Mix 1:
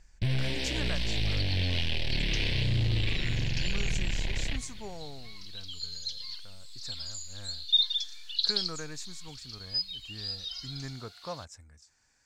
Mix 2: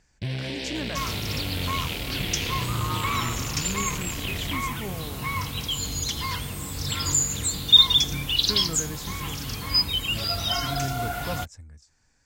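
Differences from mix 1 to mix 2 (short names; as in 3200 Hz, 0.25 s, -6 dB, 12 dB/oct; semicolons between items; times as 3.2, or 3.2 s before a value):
first sound: add HPF 420 Hz 6 dB/oct; second sound: remove band-pass 4300 Hz, Q 8.3; master: add low shelf 470 Hz +10 dB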